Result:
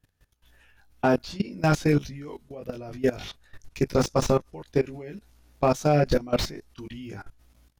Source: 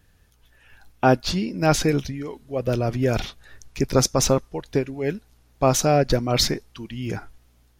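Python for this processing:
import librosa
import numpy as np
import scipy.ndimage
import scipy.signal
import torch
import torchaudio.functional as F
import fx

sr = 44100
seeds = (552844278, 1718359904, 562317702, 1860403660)

y = fx.doubler(x, sr, ms=20.0, db=-3)
y = fx.level_steps(y, sr, step_db=19)
y = fx.slew_limit(y, sr, full_power_hz=160.0)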